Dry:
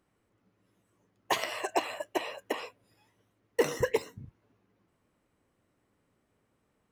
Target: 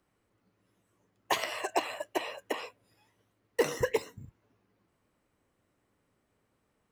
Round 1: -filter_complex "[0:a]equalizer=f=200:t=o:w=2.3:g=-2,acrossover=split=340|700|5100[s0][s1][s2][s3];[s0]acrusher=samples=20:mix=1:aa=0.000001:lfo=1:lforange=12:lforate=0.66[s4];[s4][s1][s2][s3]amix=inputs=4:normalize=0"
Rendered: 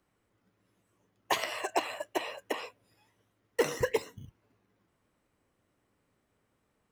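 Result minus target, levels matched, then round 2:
decimation with a swept rate: distortion +9 dB
-filter_complex "[0:a]equalizer=f=200:t=o:w=2.3:g=-2,acrossover=split=340|700|5100[s0][s1][s2][s3];[s0]acrusher=samples=8:mix=1:aa=0.000001:lfo=1:lforange=4.8:lforate=0.66[s4];[s4][s1][s2][s3]amix=inputs=4:normalize=0"

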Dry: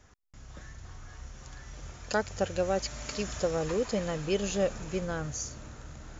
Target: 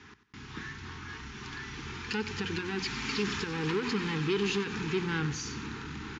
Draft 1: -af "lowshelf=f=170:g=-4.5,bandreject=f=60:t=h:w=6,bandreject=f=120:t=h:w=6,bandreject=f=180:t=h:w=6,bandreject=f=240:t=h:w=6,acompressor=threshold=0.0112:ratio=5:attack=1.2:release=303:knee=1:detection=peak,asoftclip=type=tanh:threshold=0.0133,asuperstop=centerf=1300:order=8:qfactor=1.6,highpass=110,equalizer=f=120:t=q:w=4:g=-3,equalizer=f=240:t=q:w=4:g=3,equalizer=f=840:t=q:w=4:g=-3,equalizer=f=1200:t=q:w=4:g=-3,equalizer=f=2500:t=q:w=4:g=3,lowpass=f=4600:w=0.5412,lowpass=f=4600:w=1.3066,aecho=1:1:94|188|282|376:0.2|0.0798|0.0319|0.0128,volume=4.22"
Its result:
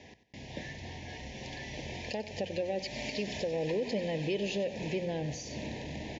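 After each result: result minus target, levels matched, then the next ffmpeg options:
compression: peak gain reduction +9 dB; 500 Hz band +4.5 dB
-af "lowshelf=f=170:g=-4.5,bandreject=f=60:t=h:w=6,bandreject=f=120:t=h:w=6,bandreject=f=180:t=h:w=6,bandreject=f=240:t=h:w=6,acompressor=threshold=0.0422:ratio=5:attack=1.2:release=303:knee=1:detection=peak,asoftclip=type=tanh:threshold=0.0133,asuperstop=centerf=1300:order=8:qfactor=1.6,highpass=110,equalizer=f=120:t=q:w=4:g=-3,equalizer=f=240:t=q:w=4:g=3,equalizer=f=840:t=q:w=4:g=-3,equalizer=f=1200:t=q:w=4:g=-3,equalizer=f=2500:t=q:w=4:g=3,lowpass=f=4600:w=0.5412,lowpass=f=4600:w=1.3066,aecho=1:1:94|188|282|376:0.2|0.0798|0.0319|0.0128,volume=4.22"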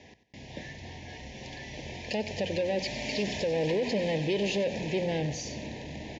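500 Hz band +3.5 dB
-af "lowshelf=f=170:g=-4.5,bandreject=f=60:t=h:w=6,bandreject=f=120:t=h:w=6,bandreject=f=180:t=h:w=6,bandreject=f=240:t=h:w=6,acompressor=threshold=0.0422:ratio=5:attack=1.2:release=303:knee=1:detection=peak,asoftclip=type=tanh:threshold=0.0133,asuperstop=centerf=600:order=8:qfactor=1.6,highpass=110,equalizer=f=120:t=q:w=4:g=-3,equalizer=f=240:t=q:w=4:g=3,equalizer=f=840:t=q:w=4:g=-3,equalizer=f=1200:t=q:w=4:g=-3,equalizer=f=2500:t=q:w=4:g=3,lowpass=f=4600:w=0.5412,lowpass=f=4600:w=1.3066,aecho=1:1:94|188|282|376:0.2|0.0798|0.0319|0.0128,volume=4.22"

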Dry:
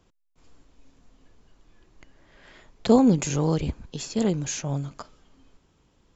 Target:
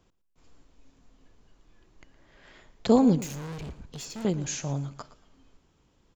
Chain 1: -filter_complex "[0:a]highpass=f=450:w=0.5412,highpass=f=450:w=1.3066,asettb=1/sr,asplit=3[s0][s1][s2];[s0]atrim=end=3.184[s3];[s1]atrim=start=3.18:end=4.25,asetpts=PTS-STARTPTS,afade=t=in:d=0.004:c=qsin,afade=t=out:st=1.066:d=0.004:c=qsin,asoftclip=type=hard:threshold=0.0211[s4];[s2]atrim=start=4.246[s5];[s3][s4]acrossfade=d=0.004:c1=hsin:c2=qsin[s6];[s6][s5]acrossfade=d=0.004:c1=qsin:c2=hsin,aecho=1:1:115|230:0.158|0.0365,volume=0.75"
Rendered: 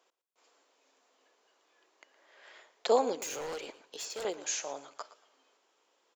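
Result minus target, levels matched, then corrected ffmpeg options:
500 Hz band +4.5 dB
-filter_complex "[0:a]asettb=1/sr,asplit=3[s0][s1][s2];[s0]atrim=end=3.184[s3];[s1]atrim=start=3.18:end=4.25,asetpts=PTS-STARTPTS,afade=t=in:d=0.004:c=qsin,afade=t=out:st=1.066:d=0.004:c=qsin,asoftclip=type=hard:threshold=0.0211[s4];[s2]atrim=start=4.246[s5];[s3][s4]acrossfade=d=0.004:c1=hsin:c2=qsin[s6];[s6][s5]acrossfade=d=0.004:c1=qsin:c2=hsin,aecho=1:1:115|230:0.158|0.0365,volume=0.75"

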